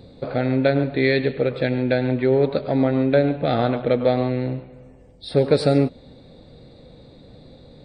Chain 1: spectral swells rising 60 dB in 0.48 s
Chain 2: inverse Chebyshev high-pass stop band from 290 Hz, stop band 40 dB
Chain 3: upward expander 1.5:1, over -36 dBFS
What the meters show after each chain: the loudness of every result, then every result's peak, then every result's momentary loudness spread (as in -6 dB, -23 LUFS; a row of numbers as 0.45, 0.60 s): -19.5, -27.5, -23.5 LUFS; -3.0, -10.5, -4.0 dBFS; 7, 8, 9 LU